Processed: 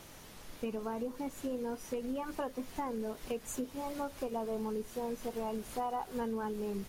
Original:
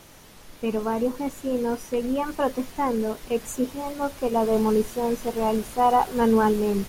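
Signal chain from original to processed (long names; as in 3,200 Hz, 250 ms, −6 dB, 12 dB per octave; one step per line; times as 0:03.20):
downward compressor 6 to 1, threshold −31 dBFS, peak gain reduction 15 dB
level −3.5 dB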